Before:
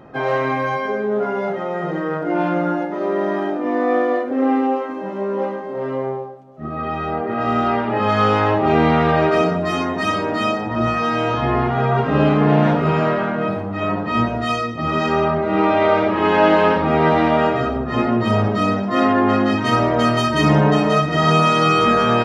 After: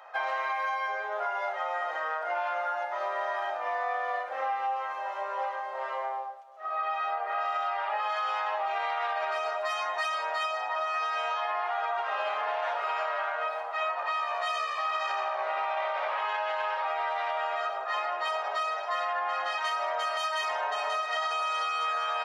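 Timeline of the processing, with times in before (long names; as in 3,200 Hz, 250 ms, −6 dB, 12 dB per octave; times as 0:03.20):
0:13.90–0:16.26: echo with shifted repeats 86 ms, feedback 49%, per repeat −63 Hz, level −7 dB
whole clip: Butterworth high-pass 670 Hz 36 dB per octave; brickwall limiter −15.5 dBFS; downward compressor 5 to 1, threshold −28 dBFS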